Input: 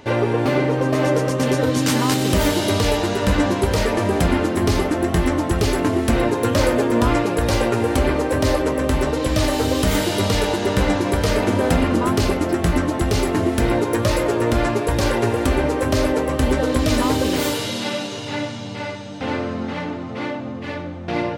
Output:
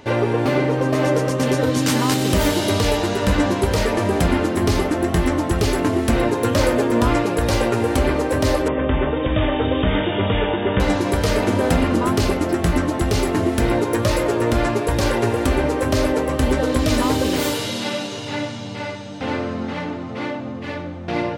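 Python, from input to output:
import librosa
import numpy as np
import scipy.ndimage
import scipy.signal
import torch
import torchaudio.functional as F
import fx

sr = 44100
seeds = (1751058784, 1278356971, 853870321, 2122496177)

y = fx.brickwall_lowpass(x, sr, high_hz=3700.0, at=(8.68, 10.8))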